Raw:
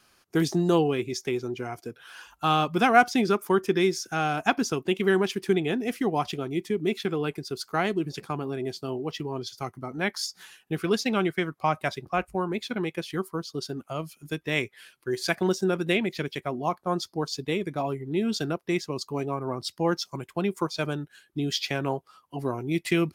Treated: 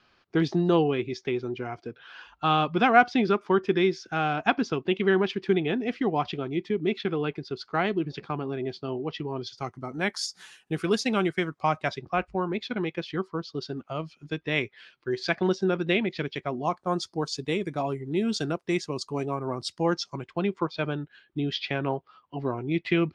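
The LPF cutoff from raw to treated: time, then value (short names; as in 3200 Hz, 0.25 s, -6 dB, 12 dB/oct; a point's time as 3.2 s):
LPF 24 dB/oct
9.32 s 4300 Hz
10.03 s 9700 Hz
11.15 s 9700 Hz
12.27 s 4800 Hz
16.3 s 4800 Hz
16.89 s 8900 Hz
19.71 s 8900 Hz
20.58 s 3800 Hz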